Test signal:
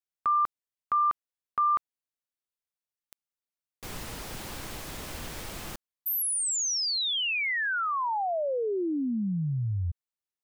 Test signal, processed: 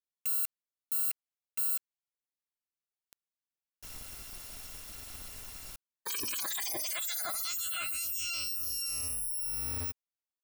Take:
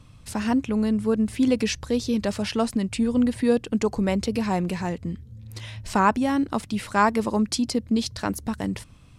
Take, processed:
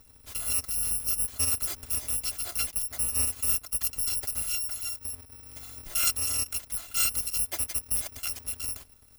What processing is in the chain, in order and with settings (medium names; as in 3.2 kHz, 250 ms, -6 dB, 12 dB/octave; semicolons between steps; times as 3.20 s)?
bit-reversed sample order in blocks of 256 samples; trim -6.5 dB